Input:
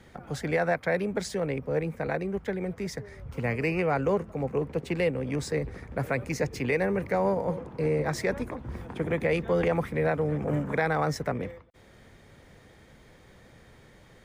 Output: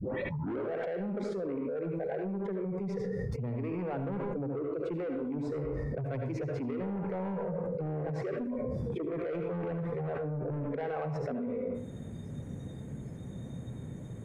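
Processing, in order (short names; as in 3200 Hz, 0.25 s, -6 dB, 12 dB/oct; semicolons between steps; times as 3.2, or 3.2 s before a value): tape start at the beginning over 0.75 s; spectral noise reduction 25 dB; in parallel at -11 dB: short-mantissa float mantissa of 2-bit; on the sum: band-pass 160 Hz, Q 1.5; soft clip -34.5 dBFS, distortion -9 dB; on a send at -4 dB: reverb RT60 0.45 s, pre-delay 67 ms; on the sum: fast leveller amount 100%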